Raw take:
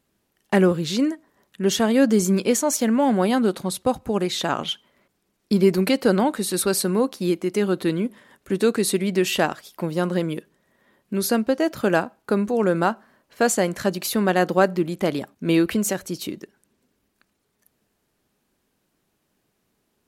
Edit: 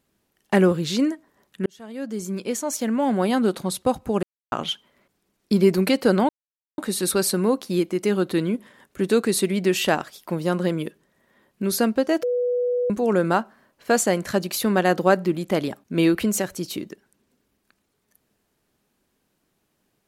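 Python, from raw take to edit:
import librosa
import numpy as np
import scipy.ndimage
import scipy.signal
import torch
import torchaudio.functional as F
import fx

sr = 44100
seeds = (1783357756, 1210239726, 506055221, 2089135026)

y = fx.edit(x, sr, fx.fade_in_span(start_s=1.66, length_s=1.89),
    fx.silence(start_s=4.23, length_s=0.29),
    fx.insert_silence(at_s=6.29, length_s=0.49),
    fx.bleep(start_s=11.74, length_s=0.67, hz=491.0, db=-19.5), tone=tone)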